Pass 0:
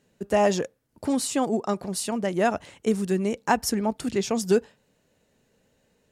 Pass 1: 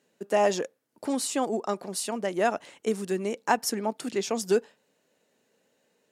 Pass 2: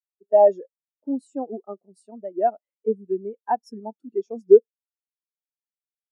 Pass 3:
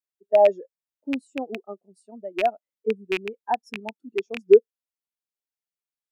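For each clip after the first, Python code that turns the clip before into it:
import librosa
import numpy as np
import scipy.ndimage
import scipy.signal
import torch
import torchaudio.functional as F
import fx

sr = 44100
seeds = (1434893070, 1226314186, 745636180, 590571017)

y1 = scipy.signal.sosfilt(scipy.signal.butter(2, 270.0, 'highpass', fs=sr, output='sos'), x)
y1 = y1 * librosa.db_to_amplitude(-1.5)
y2 = fx.spectral_expand(y1, sr, expansion=2.5)
y2 = y2 * librosa.db_to_amplitude(4.0)
y3 = fx.rattle_buzz(y2, sr, strikes_db=-36.0, level_db=-14.0)
y3 = y3 * librosa.db_to_amplitude(-1.5)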